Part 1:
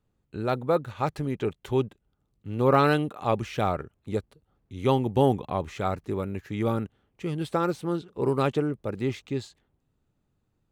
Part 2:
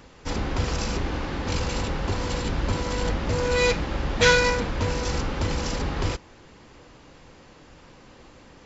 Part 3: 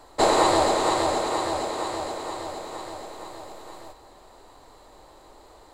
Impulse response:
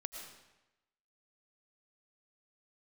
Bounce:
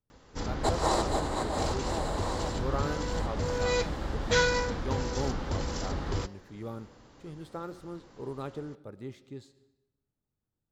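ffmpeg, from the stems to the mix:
-filter_complex "[0:a]volume=0.178,asplit=3[s0][s1][s2];[s1]volume=0.335[s3];[1:a]adelay=100,volume=0.501[s4];[2:a]adelay=450,volume=0.473[s5];[s2]apad=whole_len=272625[s6];[s5][s6]sidechaincompress=threshold=0.00398:ratio=8:attack=23:release=101[s7];[3:a]atrim=start_sample=2205[s8];[s3][s8]afir=irnorm=-1:irlink=0[s9];[s0][s4][s7][s9]amix=inputs=4:normalize=0,equalizer=f=2500:t=o:w=0.56:g=-6.5,bandreject=f=181.4:t=h:w=4,bandreject=f=362.8:t=h:w=4,bandreject=f=544.2:t=h:w=4,bandreject=f=725.6:t=h:w=4,bandreject=f=907:t=h:w=4,bandreject=f=1088.4:t=h:w=4,bandreject=f=1269.8:t=h:w=4,bandreject=f=1451.2:t=h:w=4,bandreject=f=1632.6:t=h:w=4,bandreject=f=1814:t=h:w=4,bandreject=f=1995.4:t=h:w=4,bandreject=f=2176.8:t=h:w=4,bandreject=f=2358.2:t=h:w=4,bandreject=f=2539.6:t=h:w=4,bandreject=f=2721:t=h:w=4,bandreject=f=2902.4:t=h:w=4,bandreject=f=3083.8:t=h:w=4,bandreject=f=3265.2:t=h:w=4,bandreject=f=3446.6:t=h:w=4,bandreject=f=3628:t=h:w=4,bandreject=f=3809.4:t=h:w=4,bandreject=f=3990.8:t=h:w=4,bandreject=f=4172.2:t=h:w=4,bandreject=f=4353.6:t=h:w=4,bandreject=f=4535:t=h:w=4,bandreject=f=4716.4:t=h:w=4,bandreject=f=4897.8:t=h:w=4,bandreject=f=5079.2:t=h:w=4,bandreject=f=5260.6:t=h:w=4,bandreject=f=5442:t=h:w=4,bandreject=f=5623.4:t=h:w=4"

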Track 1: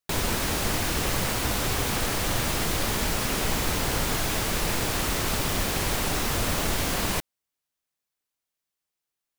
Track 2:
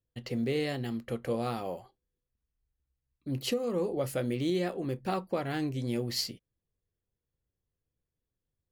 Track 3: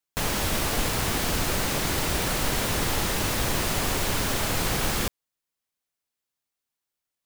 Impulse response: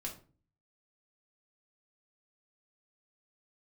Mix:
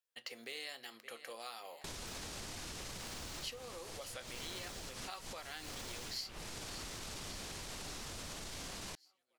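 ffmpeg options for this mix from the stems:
-filter_complex "[0:a]lowpass=11000,adelay=1750,volume=0.335[s0];[1:a]highpass=980,acontrast=56,volume=0.531,asplit=4[s1][s2][s3][s4];[s2]volume=0.237[s5];[s3]volume=0.133[s6];[2:a]aeval=exprs='val(0)*pow(10,-39*(0.5-0.5*cos(2*PI*0.75*n/s))/20)':c=same,adelay=1900,volume=0.398[s7];[s4]apad=whole_len=491271[s8];[s0][s8]sidechaincompress=threshold=0.00251:ratio=4:attack=11:release=117[s9];[s9][s7]amix=inputs=2:normalize=0,alimiter=level_in=1.78:limit=0.0631:level=0:latency=1:release=26,volume=0.562,volume=1[s10];[3:a]atrim=start_sample=2205[s11];[s5][s11]afir=irnorm=-1:irlink=0[s12];[s6]aecho=0:1:568|1136|1704|2272|2840|3408|3976|4544|5112|5680:1|0.6|0.36|0.216|0.13|0.0778|0.0467|0.028|0.0168|0.0101[s13];[s1][s10][s12][s13]amix=inputs=4:normalize=0,acrossover=split=3700|7900[s14][s15][s16];[s14]acompressor=threshold=0.00447:ratio=4[s17];[s15]acompressor=threshold=0.00447:ratio=4[s18];[s16]acompressor=threshold=0.001:ratio=4[s19];[s17][s18][s19]amix=inputs=3:normalize=0"

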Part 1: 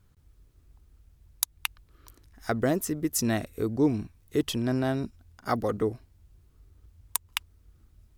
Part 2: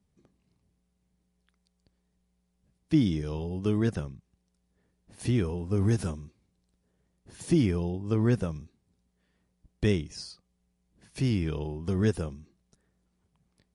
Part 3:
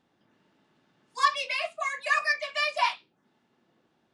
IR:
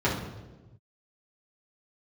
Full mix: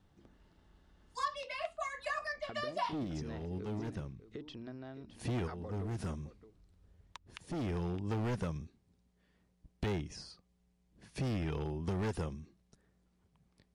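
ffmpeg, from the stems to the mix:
-filter_complex "[0:a]lowpass=f=4800:w=0.5412,lowpass=f=4800:w=1.3066,bandreject=f=60:t=h:w=6,bandreject=f=120:t=h:w=6,bandreject=f=180:t=h:w=6,bandreject=f=240:t=h:w=6,bandreject=f=300:t=h:w=6,acompressor=threshold=0.02:ratio=6,volume=0.335,asplit=3[s0][s1][s2];[s1]volume=0.2[s3];[1:a]highshelf=f=10000:g=-11.5,asoftclip=type=hard:threshold=0.0501,volume=1.06[s4];[2:a]bandreject=f=2400:w=6.5,volume=0.668[s5];[s2]apad=whole_len=606235[s6];[s4][s6]sidechaincompress=threshold=0.00224:ratio=4:attack=7.3:release=422[s7];[s3]aecho=0:1:615:1[s8];[s0][s7][s5][s8]amix=inputs=4:normalize=0,acrossover=split=870|2000[s9][s10][s11];[s9]acompressor=threshold=0.02:ratio=4[s12];[s10]acompressor=threshold=0.00631:ratio=4[s13];[s11]acompressor=threshold=0.00355:ratio=4[s14];[s12][s13][s14]amix=inputs=3:normalize=0"

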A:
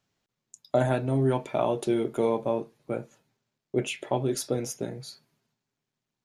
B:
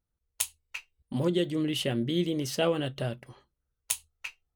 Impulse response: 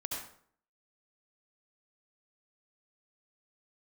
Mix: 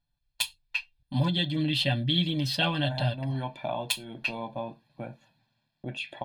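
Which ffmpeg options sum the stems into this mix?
-filter_complex "[0:a]acompressor=threshold=0.00224:ratio=1.5,adelay=2100,volume=1.33[s0];[1:a]equalizer=f=5300:w=0.53:g=4.5,aecho=1:1:6.9:0.78,volume=0.75,asplit=2[s1][s2];[s2]apad=whole_len=368098[s3];[s0][s3]sidechaincompress=threshold=0.0224:ratio=8:attack=16:release=314[s4];[s4][s1]amix=inputs=2:normalize=0,highshelf=f=5100:t=q:w=3:g=-7,aecho=1:1:1.2:0.89"

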